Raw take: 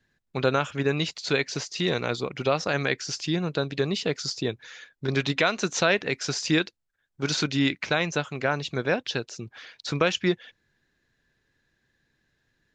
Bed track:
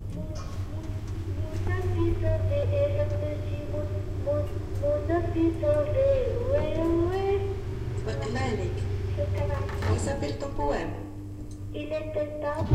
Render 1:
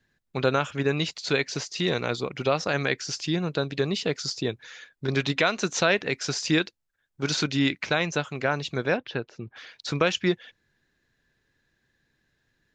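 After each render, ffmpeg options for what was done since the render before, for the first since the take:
-filter_complex "[0:a]asettb=1/sr,asplit=3[s0][s1][s2];[s0]atrim=end=8.974[s3];[s1]atrim=start=8.97:end=9.56,asetpts=PTS-STARTPTS,afade=t=in:d=0.004:c=qsin,afade=t=out:st=0.586:d=0.004:c=qsin,lowpass=2200[s4];[s2]atrim=start=9.556[s5];[s3][s4]acrossfade=d=0.004:c1=hsin:c2=qsin[s6];[s6][s5]acrossfade=d=0.004:c1=qsin:c2=hsin"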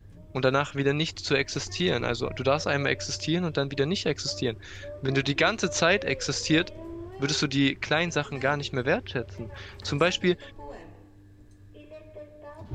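-filter_complex "[1:a]volume=0.188[s0];[0:a][s0]amix=inputs=2:normalize=0"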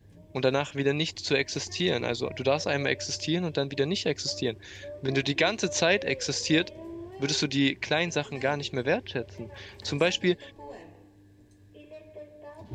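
-af "highpass=f=140:p=1,equalizer=f=1300:w=5.1:g=-14.5"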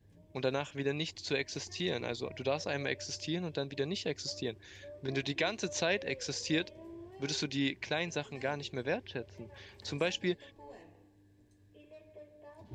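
-af "volume=0.398"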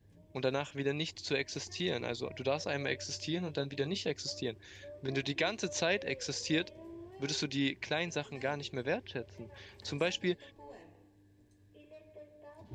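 -filter_complex "[0:a]asettb=1/sr,asplit=3[s0][s1][s2];[s0]atrim=end=2.864[s3];[s1]atrim=start=2.86:end=4.11,asetpts=PTS-STARTPTS,afade=t=in:d=0.004:c=qsin,afade=t=out:st=1.246:d=0.004:c=qsin,asplit=2[s4][s5];[s5]adelay=21,volume=0.316[s6];[s4][s6]amix=inputs=2:normalize=0,atrim=end_sample=55125[s7];[s2]atrim=start=4.106[s8];[s3][s7]acrossfade=d=0.004:c1=hsin:c2=qsin[s9];[s9][s8]acrossfade=d=0.004:c1=qsin:c2=hsin"

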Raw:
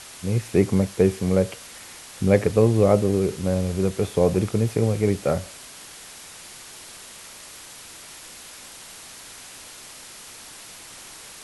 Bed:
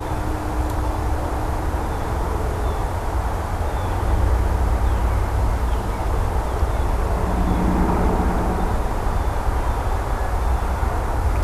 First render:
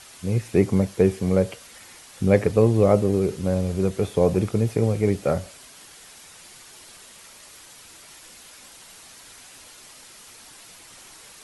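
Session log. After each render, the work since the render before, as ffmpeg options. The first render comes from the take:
-af "afftdn=nr=6:nf=-43"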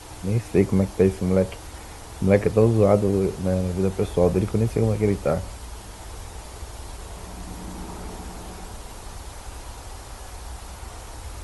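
-filter_complex "[1:a]volume=0.141[s0];[0:a][s0]amix=inputs=2:normalize=0"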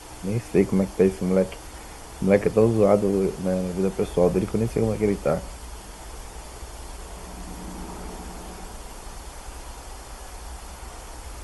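-af "equalizer=f=93:t=o:w=0.4:g=-13.5,bandreject=f=3900:w=11"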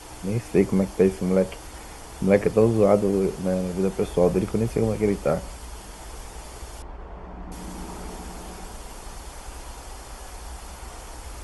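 -filter_complex "[0:a]asettb=1/sr,asplit=3[s0][s1][s2];[s0]atrim=end=6.824[s3];[s1]atrim=start=6.82:end=7.52,asetpts=PTS-STARTPTS,afade=t=in:d=0.004:c=qsin,afade=t=out:st=0.696:d=0.004:c=qsin,lowpass=1600[s4];[s2]atrim=start=7.516[s5];[s3][s4]acrossfade=d=0.004:c1=hsin:c2=qsin[s6];[s6][s5]acrossfade=d=0.004:c1=qsin:c2=hsin"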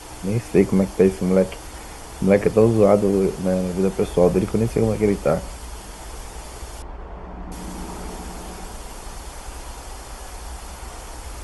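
-af "volume=1.5,alimiter=limit=0.708:level=0:latency=1"

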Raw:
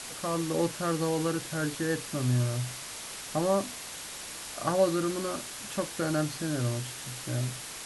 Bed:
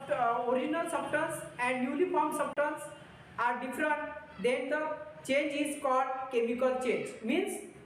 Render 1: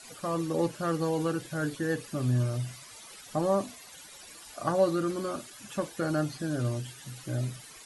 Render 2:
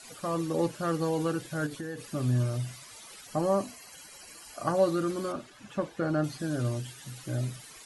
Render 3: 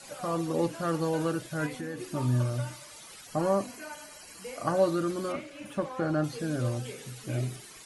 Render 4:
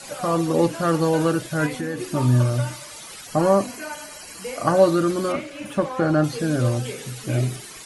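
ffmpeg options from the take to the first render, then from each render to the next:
-af "afftdn=nr=14:nf=-41"
-filter_complex "[0:a]asettb=1/sr,asplit=3[s0][s1][s2];[s0]atrim=end=1.664[s3];[s1]atrim=start=1.66:end=2.13,asetpts=PTS-STARTPTS,afade=t=in:d=0.004:c=qsin,afade=t=out:st=0.466:d=0.004:c=qsin,acompressor=threshold=0.0224:ratio=6:attack=3.2:release=140:knee=1:detection=peak[s4];[s2]atrim=start=2.126[s5];[s3][s4]acrossfade=d=0.004:c1=hsin:c2=qsin[s6];[s6][s5]acrossfade=d=0.004:c1=qsin:c2=hsin,asettb=1/sr,asplit=3[s7][s8][s9];[s7]atrim=end=3.274[s10];[s8]atrim=start=3.27:end=4.77,asetpts=PTS-STARTPTS,afade=t=in:d=0.004:c=qsin,afade=t=out:st=1.496:d=0.004:c=qsin,asuperstop=centerf=3600:order=20:qfactor=7.3[s11];[s9]atrim=start=4.766[s12];[s10][s11]acrossfade=d=0.004:c1=hsin:c2=qsin[s13];[s13][s12]acrossfade=d=0.004:c1=qsin:c2=hsin,asettb=1/sr,asplit=3[s14][s15][s16];[s14]atrim=end=5.324[s17];[s15]atrim=start=5.32:end=6.24,asetpts=PTS-STARTPTS,afade=t=in:d=0.004:c=qsin,afade=t=out:st=0.916:d=0.004:c=qsin,aemphasis=mode=reproduction:type=75fm[s18];[s16]atrim=start=6.236[s19];[s17][s18]acrossfade=d=0.004:c1=hsin:c2=qsin[s20];[s20][s19]acrossfade=d=0.004:c1=qsin:c2=hsin"
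-filter_complex "[1:a]volume=0.237[s0];[0:a][s0]amix=inputs=2:normalize=0"
-af "volume=2.82"

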